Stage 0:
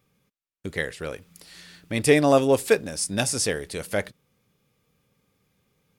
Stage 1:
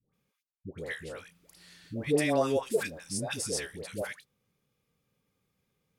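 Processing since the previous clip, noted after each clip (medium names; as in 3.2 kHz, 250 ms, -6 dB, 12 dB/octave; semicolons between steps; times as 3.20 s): phase dispersion highs, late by 137 ms, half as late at 820 Hz; trim -8.5 dB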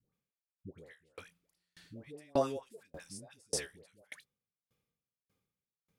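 sawtooth tremolo in dB decaying 1.7 Hz, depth 37 dB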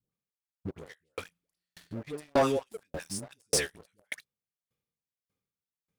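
waveshaping leveller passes 3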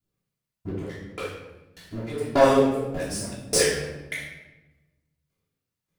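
simulated room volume 510 m³, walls mixed, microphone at 3.1 m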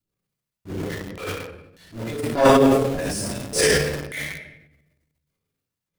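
in parallel at -4 dB: bit crusher 6-bit; on the sum: transient shaper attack -11 dB, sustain +10 dB; trim -1 dB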